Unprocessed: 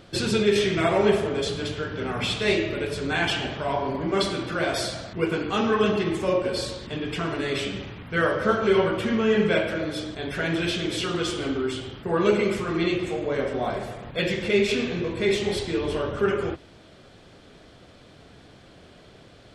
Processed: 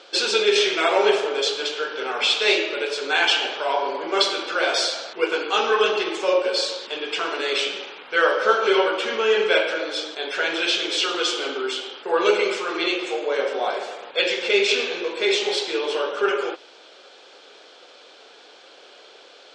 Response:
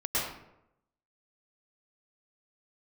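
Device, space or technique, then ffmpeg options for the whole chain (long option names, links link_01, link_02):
phone speaker on a table: -af "highpass=frequency=480:width=0.5412,highpass=frequency=480:width=1.3066,equalizer=frequency=650:width_type=q:width=4:gain=-8,equalizer=frequency=1100:width_type=q:width=4:gain=-5,equalizer=frequency=1900:width_type=q:width=4:gain=-8,lowpass=frequency=6900:width=0.5412,lowpass=frequency=6900:width=1.3066,volume=9dB"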